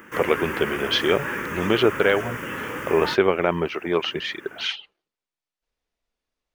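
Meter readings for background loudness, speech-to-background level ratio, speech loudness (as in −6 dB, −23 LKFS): −30.0 LKFS, 7.0 dB, −23.0 LKFS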